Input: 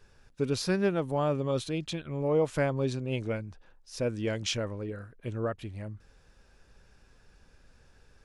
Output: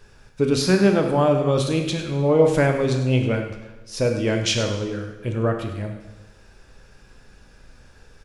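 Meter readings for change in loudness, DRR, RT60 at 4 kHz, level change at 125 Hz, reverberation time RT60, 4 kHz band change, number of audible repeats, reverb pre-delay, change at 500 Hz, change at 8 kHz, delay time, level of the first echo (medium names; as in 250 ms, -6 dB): +10.5 dB, 3.5 dB, 1.0 s, +10.5 dB, 1.1 s, +10.0 dB, 1, 5 ms, +10.0 dB, +10.0 dB, 101 ms, -13.0 dB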